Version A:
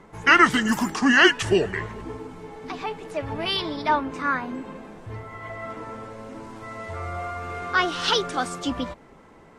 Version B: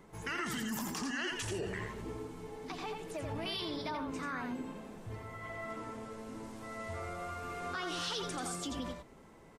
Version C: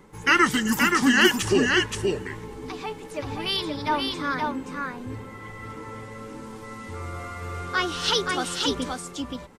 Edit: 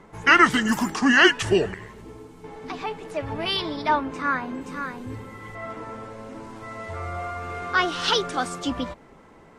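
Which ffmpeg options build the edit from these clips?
ffmpeg -i take0.wav -i take1.wav -i take2.wav -filter_complex "[0:a]asplit=3[link_01][link_02][link_03];[link_01]atrim=end=1.742[link_04];[1:a]atrim=start=1.738:end=2.442[link_05];[link_02]atrim=start=2.438:end=4.612[link_06];[2:a]atrim=start=4.608:end=5.552[link_07];[link_03]atrim=start=5.548[link_08];[link_04][link_05]acrossfade=duration=0.004:curve1=hsin:curve2=hsin[link_09];[link_09][link_06]acrossfade=duration=0.004:curve1=hsin:curve2=hsin[link_10];[link_10][link_07]acrossfade=duration=0.004:curve1=hsin:curve2=hsin[link_11];[link_11][link_08]acrossfade=duration=0.004:curve1=hsin:curve2=hsin" out.wav

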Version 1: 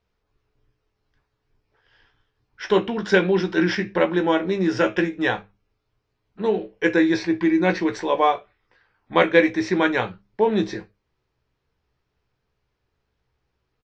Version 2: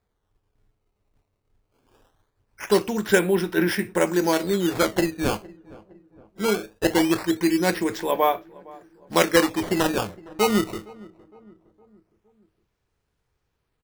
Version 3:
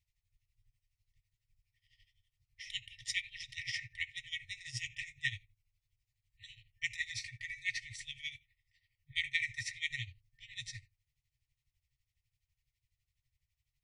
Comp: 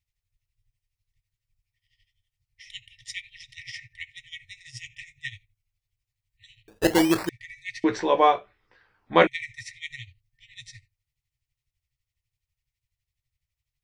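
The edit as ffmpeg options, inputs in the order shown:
ffmpeg -i take0.wav -i take1.wav -i take2.wav -filter_complex "[2:a]asplit=3[link_01][link_02][link_03];[link_01]atrim=end=6.682[link_04];[1:a]atrim=start=6.678:end=7.292[link_05];[link_02]atrim=start=7.288:end=7.842[link_06];[0:a]atrim=start=7.838:end=9.272[link_07];[link_03]atrim=start=9.268[link_08];[link_04][link_05]acrossfade=duration=0.004:curve1=hsin:curve2=hsin[link_09];[link_09][link_06]acrossfade=duration=0.004:curve1=hsin:curve2=hsin[link_10];[link_10][link_07]acrossfade=duration=0.004:curve1=hsin:curve2=hsin[link_11];[link_11][link_08]acrossfade=duration=0.004:curve1=hsin:curve2=hsin" out.wav

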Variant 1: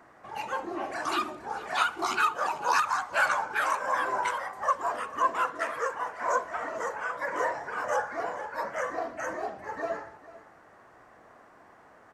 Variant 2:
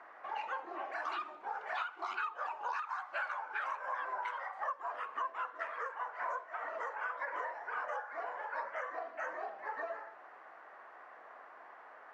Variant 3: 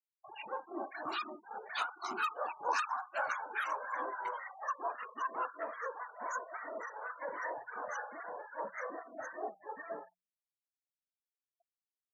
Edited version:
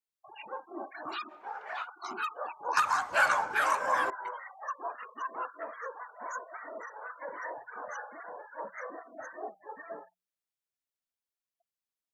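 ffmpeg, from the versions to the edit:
ffmpeg -i take0.wav -i take1.wav -i take2.wav -filter_complex "[2:a]asplit=3[link_01][link_02][link_03];[link_01]atrim=end=1.32[link_04];[1:a]atrim=start=1.28:end=1.88[link_05];[link_02]atrim=start=1.84:end=2.772[link_06];[0:a]atrim=start=2.768:end=4.102[link_07];[link_03]atrim=start=4.098[link_08];[link_04][link_05]acrossfade=duration=0.04:curve1=tri:curve2=tri[link_09];[link_09][link_06]acrossfade=duration=0.04:curve1=tri:curve2=tri[link_10];[link_10][link_07]acrossfade=duration=0.004:curve1=hsin:curve2=hsin[link_11];[link_11][link_08]acrossfade=duration=0.004:curve1=hsin:curve2=hsin" out.wav

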